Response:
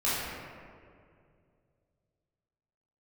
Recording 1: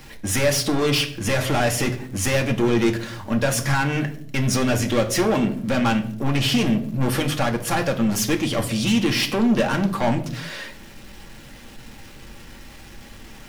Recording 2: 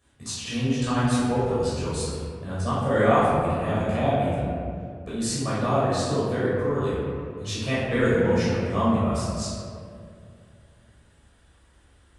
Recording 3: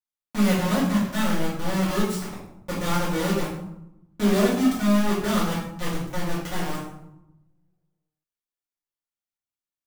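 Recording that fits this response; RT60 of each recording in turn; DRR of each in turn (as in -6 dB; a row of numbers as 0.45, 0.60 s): 2; not exponential, 2.3 s, 0.85 s; 3.0, -11.0, -10.5 dB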